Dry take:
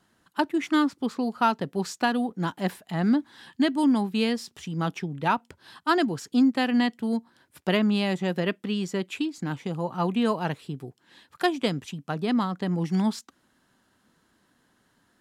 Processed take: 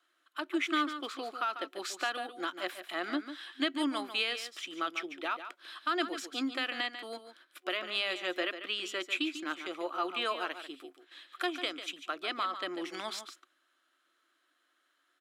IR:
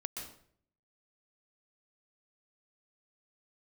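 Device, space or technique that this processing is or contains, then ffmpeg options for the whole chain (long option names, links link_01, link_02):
laptop speaker: -af "highpass=frequency=140:poles=1,agate=range=-7dB:threshold=-57dB:ratio=16:detection=peak,highpass=frequency=440:width=0.5412,highpass=frequency=440:width=1.3066,equalizer=frequency=1300:width_type=o:width=0.44:gain=8,equalizer=frequency=2400:width_type=o:width=0.6:gain=8,alimiter=limit=-18dB:level=0:latency=1:release=205,superequalizer=6b=3.16:7b=0.631:9b=0.447:13b=1.78,aecho=1:1:145:0.299,volume=-3.5dB"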